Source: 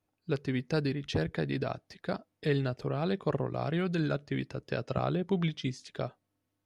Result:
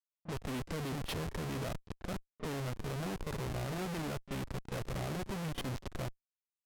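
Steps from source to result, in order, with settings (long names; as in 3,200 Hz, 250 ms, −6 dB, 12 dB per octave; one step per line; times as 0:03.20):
comparator with hysteresis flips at −40 dBFS
echo ahead of the sound 32 ms −15 dB
low-pass that shuts in the quiet parts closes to 960 Hz, open at −32 dBFS
level −4.5 dB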